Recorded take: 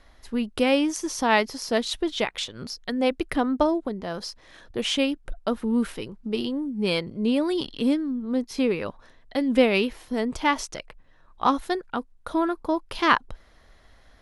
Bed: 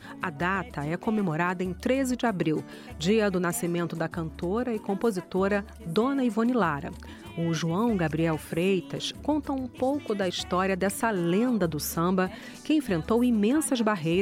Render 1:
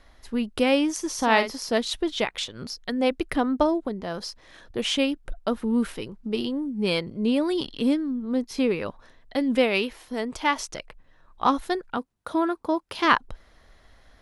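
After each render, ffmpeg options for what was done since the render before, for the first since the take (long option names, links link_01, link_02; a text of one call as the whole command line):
ffmpeg -i in.wav -filter_complex "[0:a]asettb=1/sr,asplit=3[link_01][link_02][link_03];[link_01]atrim=end=1.144[link_04];[link_02]atrim=start=1.14:end=1.56,asetpts=PTS-STARTPTS,afade=type=in:duration=0.004:curve=qsin,afade=type=out:start_time=0.416:duration=0.004:curve=qsin,asplit=2[link_05][link_06];[link_06]adelay=49,volume=-9dB[link_07];[link_05][link_07]amix=inputs=2:normalize=0,atrim=end_sample=18522[link_08];[link_03]atrim=start=1.556[link_09];[link_04][link_08]acrossfade=duration=0.004:curve1=hsin:curve2=qsin[link_10];[link_10][link_09]acrossfade=duration=0.004:curve1=qsin:curve2=hsin,asettb=1/sr,asplit=3[link_11][link_12][link_13];[link_11]atrim=end=9.554[link_14];[link_12]atrim=start=9.55:end=10.65,asetpts=PTS-STARTPTS,afade=type=in:duration=0.004:curve=qsin,afade=type=out:start_time=1.096:duration=0.004:curve=qsin,lowshelf=frequency=330:gain=-7[link_15];[link_13]atrim=start=10.646[link_16];[link_14][link_15]acrossfade=duration=0.004:curve1=hsin:curve2=qsin[link_17];[link_17][link_16]acrossfade=duration=0.004:curve1=qsin:curve2=hsin,asettb=1/sr,asplit=3[link_18][link_19][link_20];[link_18]atrim=end=11.974[link_21];[link_19]atrim=start=11.97:end=13.05,asetpts=PTS-STARTPTS,afade=type=in:duration=0.004:curve=qsin,afade=type=out:start_time=1.076:duration=0.004:curve=qsin,highpass=91[link_22];[link_20]atrim=start=13.046[link_23];[link_21][link_22]acrossfade=duration=0.004:curve1=hsin:curve2=qsin[link_24];[link_24][link_23]acrossfade=duration=0.004:curve1=qsin:curve2=hsin" out.wav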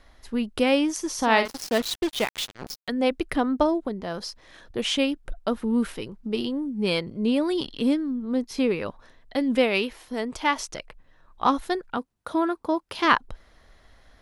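ffmpeg -i in.wav -filter_complex "[0:a]asettb=1/sr,asplit=3[link_01][link_02][link_03];[link_01]atrim=end=1.454[link_04];[link_02]atrim=start=1.45:end=2.88,asetpts=PTS-STARTPTS,afade=type=in:duration=0.004:curve=qsin,afade=type=out:start_time=1.426:duration=0.004:curve=qsin,acrusher=bits=4:mix=0:aa=0.5[link_05];[link_03]atrim=start=2.876[link_06];[link_04][link_05]acrossfade=duration=0.004:curve1=hsin:curve2=qsin[link_07];[link_07][link_06]acrossfade=duration=0.004:curve1=qsin:curve2=hsin" out.wav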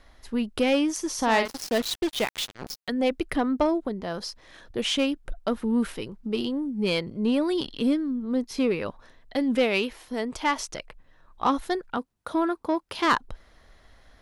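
ffmpeg -i in.wav -af "asoftclip=type=tanh:threshold=-13dB" out.wav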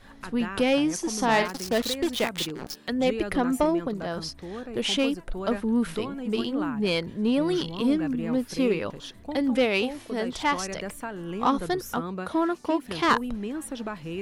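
ffmpeg -i in.wav -i bed.wav -filter_complex "[1:a]volume=-9dB[link_01];[0:a][link_01]amix=inputs=2:normalize=0" out.wav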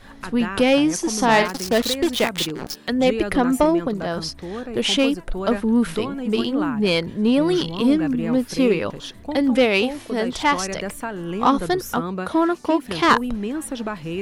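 ffmpeg -i in.wav -af "volume=6dB" out.wav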